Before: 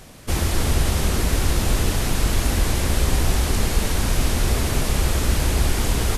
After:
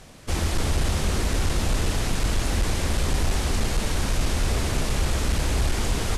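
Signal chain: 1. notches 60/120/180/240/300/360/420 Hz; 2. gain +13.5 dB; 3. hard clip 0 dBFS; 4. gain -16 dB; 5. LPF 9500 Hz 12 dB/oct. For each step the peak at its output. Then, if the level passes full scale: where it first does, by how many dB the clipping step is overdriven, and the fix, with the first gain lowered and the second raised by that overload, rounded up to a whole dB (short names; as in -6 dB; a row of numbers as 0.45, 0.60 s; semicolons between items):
-6.5, +7.0, 0.0, -16.0, -15.5 dBFS; step 2, 7.0 dB; step 2 +6.5 dB, step 4 -9 dB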